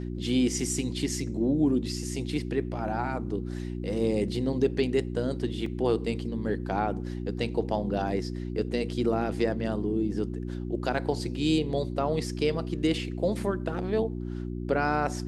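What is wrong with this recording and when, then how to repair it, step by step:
mains hum 60 Hz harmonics 6 −34 dBFS
0:05.66: drop-out 3.1 ms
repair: hum removal 60 Hz, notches 6
repair the gap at 0:05.66, 3.1 ms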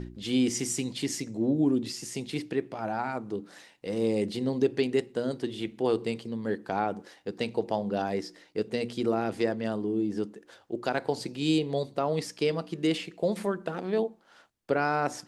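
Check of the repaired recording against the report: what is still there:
none of them is left

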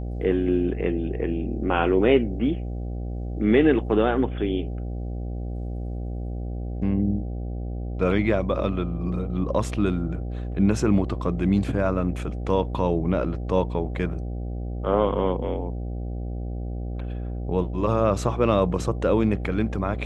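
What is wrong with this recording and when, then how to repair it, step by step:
mains buzz 60 Hz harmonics 13 −30 dBFS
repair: hum removal 60 Hz, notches 13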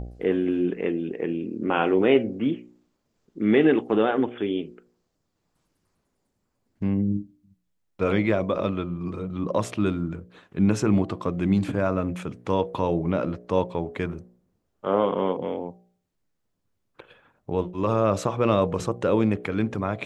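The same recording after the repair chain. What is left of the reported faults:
none of them is left

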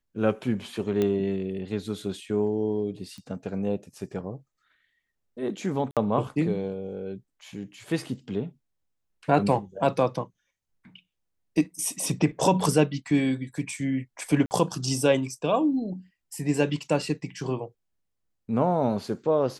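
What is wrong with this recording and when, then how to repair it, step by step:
0:01.02: click −14 dBFS
0:03.18: click −31 dBFS
0:05.91–0:05.97: drop-out 57 ms
0:14.46–0:14.51: drop-out 49 ms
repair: click removal
repair the gap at 0:05.91, 57 ms
repair the gap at 0:14.46, 49 ms

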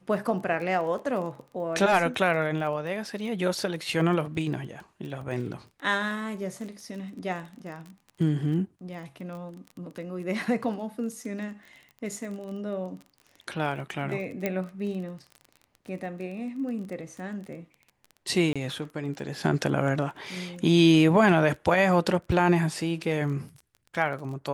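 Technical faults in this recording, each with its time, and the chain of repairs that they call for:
surface crackle 22 per second −36 dBFS
0:14.46: click −14 dBFS
0:18.53–0:18.56: drop-out 26 ms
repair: click removal
repair the gap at 0:18.53, 26 ms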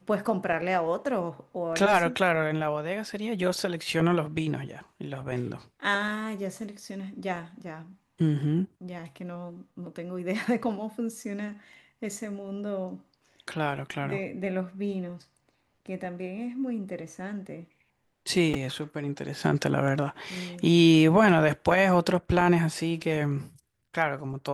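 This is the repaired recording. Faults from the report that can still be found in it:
0:14.46: click

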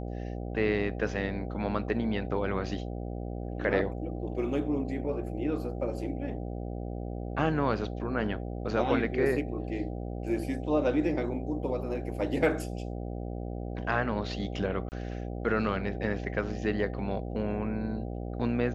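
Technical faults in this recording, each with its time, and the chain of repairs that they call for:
mains buzz 60 Hz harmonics 13 −36 dBFS
0:14.89–0:14.92: drop-out 29 ms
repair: hum removal 60 Hz, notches 13
repair the gap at 0:14.89, 29 ms

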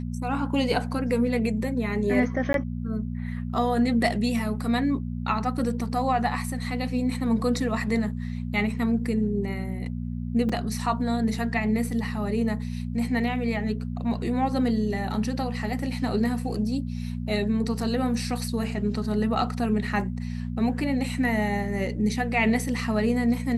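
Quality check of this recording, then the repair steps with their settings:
mains hum 60 Hz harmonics 4 −31 dBFS
0:02.53–0:02.54: drop-out 12 ms
0:10.49: drop-out 4.5 ms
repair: hum removal 60 Hz, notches 4
repair the gap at 0:02.53, 12 ms
repair the gap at 0:10.49, 4.5 ms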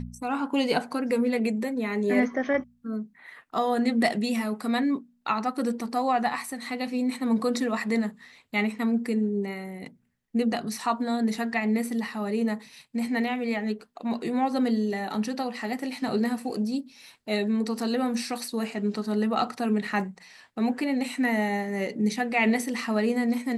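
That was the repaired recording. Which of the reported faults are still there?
none of them is left

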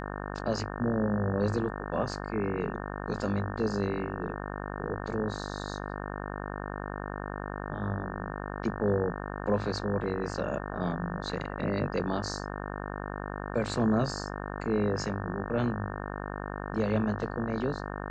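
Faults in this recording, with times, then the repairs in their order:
mains buzz 50 Hz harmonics 36 −37 dBFS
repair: hum removal 50 Hz, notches 36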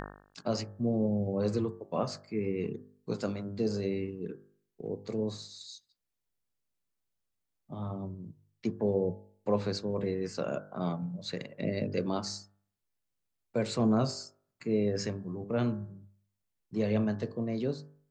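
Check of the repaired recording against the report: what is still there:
none of them is left

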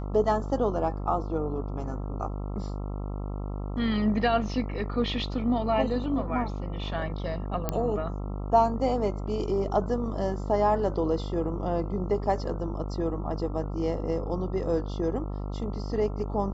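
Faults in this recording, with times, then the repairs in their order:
mains buzz 50 Hz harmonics 27 −33 dBFS
0:07.69: click −13 dBFS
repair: click removal
hum removal 50 Hz, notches 27

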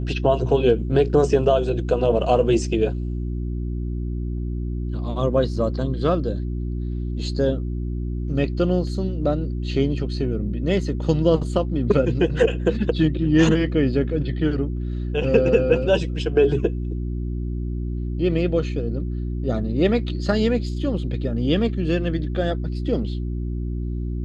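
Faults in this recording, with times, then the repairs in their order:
mains hum 60 Hz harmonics 6 −26 dBFS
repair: hum removal 60 Hz, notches 6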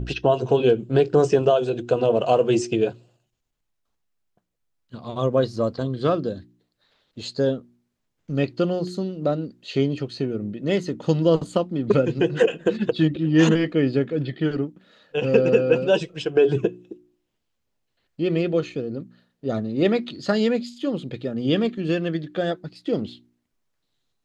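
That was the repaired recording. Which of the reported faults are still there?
none of them is left

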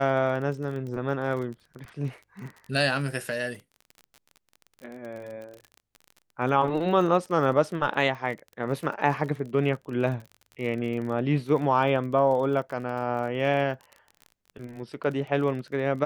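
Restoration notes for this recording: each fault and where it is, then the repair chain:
surface crackle 33 per second −35 dBFS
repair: click removal

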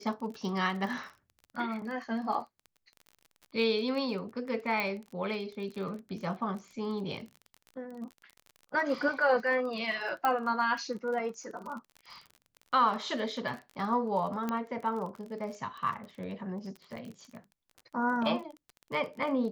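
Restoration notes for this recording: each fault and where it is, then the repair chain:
surface crackle 31 per second −39 dBFS
0:04.80: click −18 dBFS
0:10.25: click −16 dBFS
0:14.49: click −19 dBFS
0:16.96–0:16.97: drop-out 6 ms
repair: click removal
repair the gap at 0:16.96, 6 ms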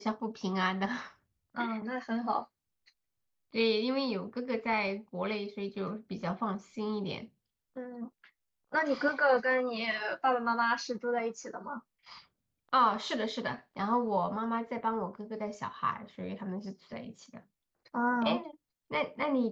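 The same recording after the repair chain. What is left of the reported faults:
none of them is left

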